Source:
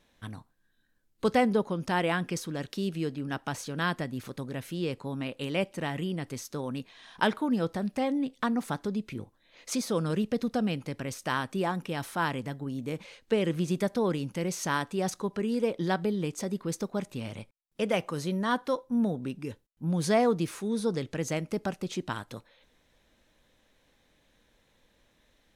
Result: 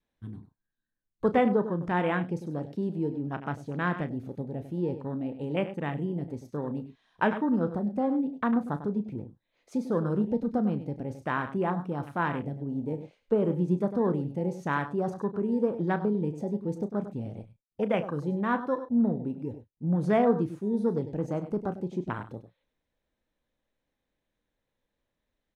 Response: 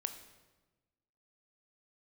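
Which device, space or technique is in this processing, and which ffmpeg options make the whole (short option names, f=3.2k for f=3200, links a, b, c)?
behind a face mask: -filter_complex "[0:a]adynamicequalizer=threshold=0.00501:dfrequency=610:dqfactor=3.4:tfrequency=610:tqfactor=3.4:attack=5:release=100:ratio=0.375:range=2:mode=cutabove:tftype=bell,highshelf=f=2.3k:g=-7.5,aecho=1:1:99:0.282,afwtdn=0.0112,asplit=2[a][b];[b]adelay=34,volume=-12dB[c];[a][c]amix=inputs=2:normalize=0,volume=1.5dB"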